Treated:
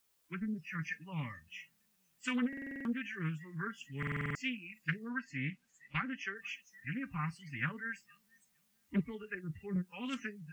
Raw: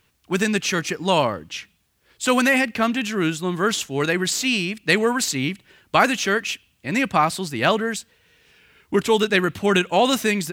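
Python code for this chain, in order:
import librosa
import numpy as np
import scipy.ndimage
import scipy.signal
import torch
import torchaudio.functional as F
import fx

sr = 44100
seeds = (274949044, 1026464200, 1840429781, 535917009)

y = fx.fixed_phaser(x, sr, hz=1600.0, stages=4)
y = y + 0.56 * np.pad(y, (int(5.1 * sr / 1000.0), 0))[:len(y)]
y = fx.env_lowpass(y, sr, base_hz=1300.0, full_db=-20.5)
y = fx.band_shelf(y, sr, hz=640.0, db=-15.5, octaves=2.3)
y = fx.echo_feedback(y, sr, ms=461, feedback_pct=53, wet_db=-22.5)
y = fx.env_lowpass_down(y, sr, base_hz=480.0, full_db=-18.0)
y = fx.rev_fdn(y, sr, rt60_s=0.31, lf_ratio=1.05, hf_ratio=0.8, size_ms=20.0, drr_db=15.0)
y = fx.quant_dither(y, sr, seeds[0], bits=8, dither='triangular')
y = fx.high_shelf(y, sr, hz=9900.0, db=fx.steps((0.0, 4.0), (5.08, -8.0), (6.35, 3.5)))
y = fx.noise_reduce_blind(y, sr, reduce_db=22)
y = fx.buffer_glitch(y, sr, at_s=(2.48, 3.98), block=2048, repeats=7)
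y = fx.doppler_dist(y, sr, depth_ms=0.43)
y = y * 10.0 ** (-7.5 / 20.0)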